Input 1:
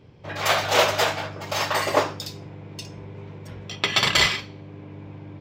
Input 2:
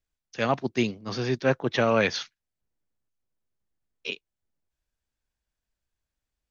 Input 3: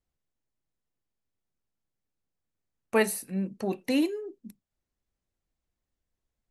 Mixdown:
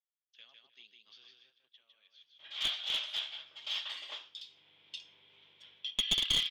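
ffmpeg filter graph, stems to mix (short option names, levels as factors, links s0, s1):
-filter_complex "[0:a]dynaudnorm=f=180:g=3:m=3.98,adelay=2150,volume=0.531[s0];[1:a]alimiter=limit=0.0891:level=0:latency=1:release=195,volume=0.501,afade=t=out:st=1.24:d=0.21:silence=0.266073,asplit=2[s1][s2];[s2]volume=0.596[s3];[2:a]volume=0.211[s4];[s3]aecho=0:1:155|310|465:1|0.21|0.0441[s5];[s0][s1][s4][s5]amix=inputs=4:normalize=0,bandpass=f=3300:t=q:w=10:csg=0,aeval=exprs='clip(val(0),-1,0.0447)':c=same"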